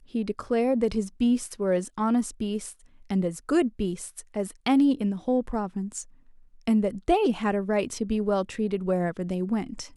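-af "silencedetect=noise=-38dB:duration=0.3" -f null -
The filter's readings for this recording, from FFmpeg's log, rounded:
silence_start: 2.73
silence_end: 3.10 | silence_duration: 0.38
silence_start: 6.03
silence_end: 6.67 | silence_duration: 0.65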